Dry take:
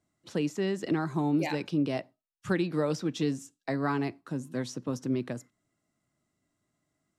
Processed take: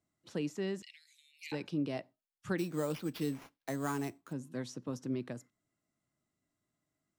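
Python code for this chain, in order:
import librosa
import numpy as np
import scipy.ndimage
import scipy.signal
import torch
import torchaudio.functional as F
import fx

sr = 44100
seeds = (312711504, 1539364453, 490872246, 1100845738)

y = fx.steep_highpass(x, sr, hz=2100.0, slope=72, at=(0.82, 1.52))
y = fx.sample_hold(y, sr, seeds[0], rate_hz=8100.0, jitter_pct=0, at=(2.58, 4.33))
y = y * librosa.db_to_amplitude(-6.5)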